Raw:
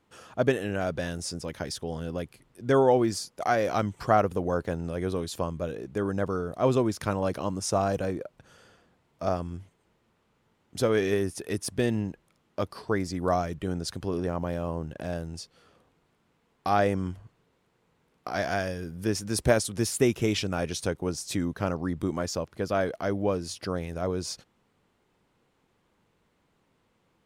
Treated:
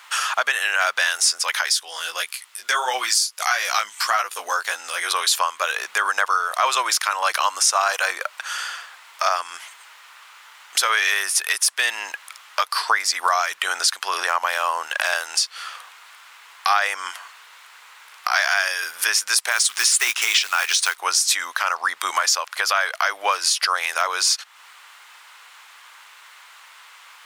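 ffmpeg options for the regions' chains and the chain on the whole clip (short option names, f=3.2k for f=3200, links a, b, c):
-filter_complex "[0:a]asettb=1/sr,asplit=3[a][b][c];[a]atrim=end=1.704[d];[b]atrim=start=1.7:end=5.11,asetpts=PTS-STARTPTS,afade=t=in:d=0.004:c=qsin,afade=t=out:st=3.406:d=0.004:c=qsin,equalizer=f=940:w=0.41:g=-9,flanger=delay=15.5:depth=3.4:speed=1.6[e];[c]atrim=start=5.106[f];[d][e]acrossfade=d=0.004:c1=hsin:c2=qsin[g];[g][f]acrossfade=d=0.004:c1=qsin:c2=hsin,asettb=1/sr,asplit=3[h][i][j];[h]atrim=end=19.514[k];[i]atrim=start=19.51:end=20.98,asetpts=PTS-STARTPTS,afade=t=in:d=0.004:c=qsin,afade=t=out:st=1.466:d=0.004:c=qsin,lowpass=f=9.8k:w=0.5412,lowpass=f=9.8k:w=1.3066,equalizer=f=550:w=2.5:g=-7.5,acrusher=bits=5:mode=log:mix=0:aa=0.000001[l];[j]atrim=start=20.976[m];[k][l]acrossfade=d=0.004:c1=hsin:c2=qsin[n];[n][m]acrossfade=d=0.004:c1=qsin:c2=hsin,highpass=f=1.1k:w=0.5412,highpass=f=1.1k:w=1.3066,acompressor=threshold=-50dB:ratio=3,alimiter=level_in=36dB:limit=-1dB:release=50:level=0:latency=1,volume=-5.5dB"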